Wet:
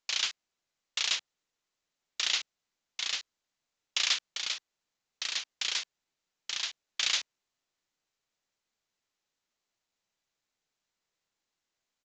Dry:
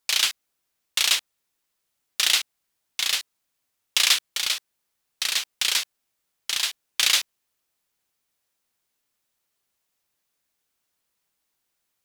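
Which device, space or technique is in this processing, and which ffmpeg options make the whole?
Bluetooth headset: -af "highpass=130,aresample=16000,aresample=44100,volume=-8.5dB" -ar 16000 -c:a sbc -b:a 64k

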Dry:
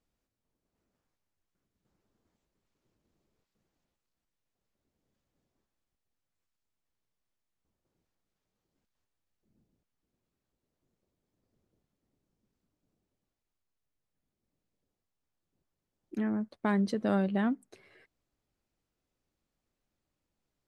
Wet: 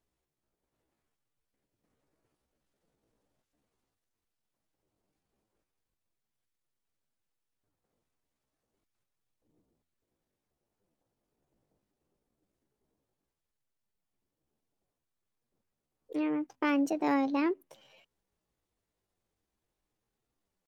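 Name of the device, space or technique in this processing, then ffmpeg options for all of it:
chipmunk voice: -af "bandreject=frequency=60:width_type=h:width=6,bandreject=frequency=120:width_type=h:width=6,bandreject=frequency=180:width_type=h:width=6,asetrate=62367,aresample=44100,atempo=0.707107"

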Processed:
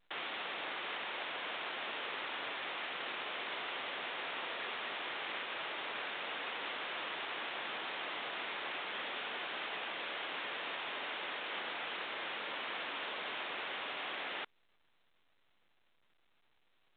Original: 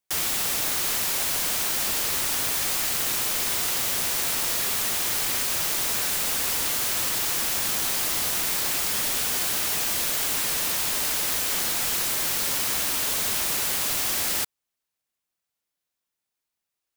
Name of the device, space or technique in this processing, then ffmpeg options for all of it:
telephone: -af "highpass=380,lowpass=3500,volume=-6.5dB" -ar 8000 -c:a pcm_alaw

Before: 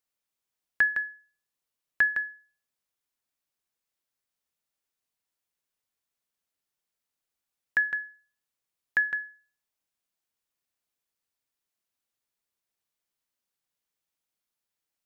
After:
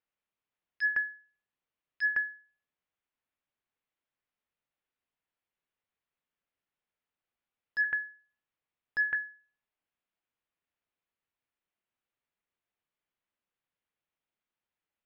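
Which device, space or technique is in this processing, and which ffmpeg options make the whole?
synthesiser wavefolder: -filter_complex "[0:a]asettb=1/sr,asplit=3[link_01][link_02][link_03];[link_01]atrim=end=7.844[link_04];[link_02]atrim=start=7.84:end=9.15,asetpts=PTS-STARTPTS,afade=type=in:duration=0.004:curve=qsin,afade=type=out:start_time=1.306:duration=0.004:curve=qsin,acrossover=split=2900[link_05][link_06];[link_06]acompressor=threshold=-53dB:ratio=4:attack=1:release=60[link_07];[link_05][link_07]amix=inputs=2:normalize=0[link_08];[link_03]atrim=start=9.146[link_09];[link_04][link_08]acrossfade=duration=0.004:curve1=hsin:curve2=qsin[link_10];[link_10][link_09]acrossfade=duration=0.004:curve1=qsin:curve2=hsin,aeval=exprs='0.0794*(abs(mod(val(0)/0.0794+3,4)-2)-1)':channel_layout=same,lowpass=frequency=3100:width=0.5412,lowpass=frequency=3100:width=1.3066"

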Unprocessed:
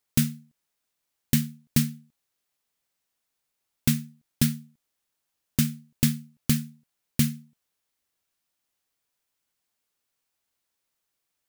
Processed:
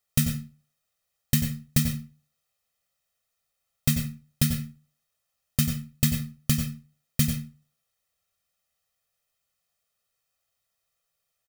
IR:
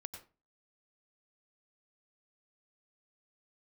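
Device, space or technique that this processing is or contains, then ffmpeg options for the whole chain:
microphone above a desk: -filter_complex "[0:a]aecho=1:1:1.6:0.89[link_01];[1:a]atrim=start_sample=2205[link_02];[link_01][link_02]afir=irnorm=-1:irlink=0,volume=2.5dB"

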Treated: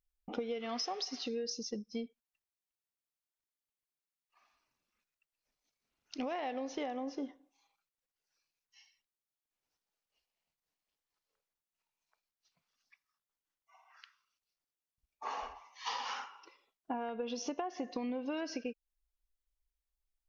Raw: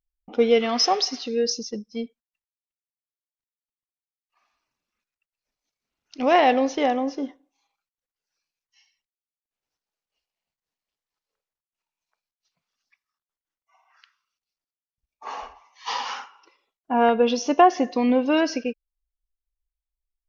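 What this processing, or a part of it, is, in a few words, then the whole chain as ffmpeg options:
serial compression, leveller first: -af "acompressor=threshold=-21dB:ratio=3,acompressor=threshold=-35dB:ratio=5,volume=-1.5dB"

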